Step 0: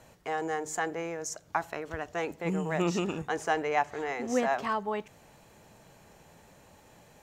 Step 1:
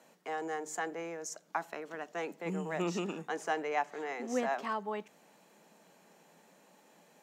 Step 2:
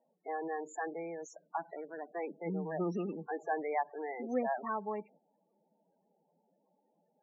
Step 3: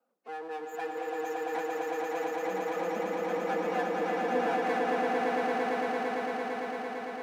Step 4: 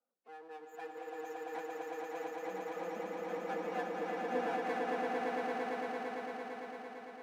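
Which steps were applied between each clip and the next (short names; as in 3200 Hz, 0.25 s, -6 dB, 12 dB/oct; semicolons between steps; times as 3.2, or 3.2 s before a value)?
steep high-pass 170 Hz 48 dB/oct; gain -5 dB
gate -57 dBFS, range -10 dB; high shelf 3900 Hz -9 dB; loudest bins only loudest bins 16
minimum comb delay 4 ms; HPF 240 Hz 24 dB/oct; swelling echo 0.113 s, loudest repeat 8, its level -3 dB
upward expander 1.5:1, over -40 dBFS; gain -5.5 dB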